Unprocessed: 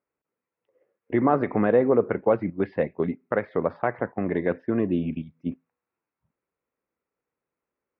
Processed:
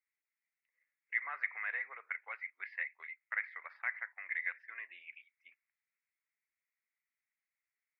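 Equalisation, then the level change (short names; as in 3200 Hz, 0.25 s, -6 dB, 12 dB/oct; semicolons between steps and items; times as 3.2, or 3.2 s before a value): ladder high-pass 1900 Hz, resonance 70%; bell 3300 Hz -12 dB 0.57 oct; +6.0 dB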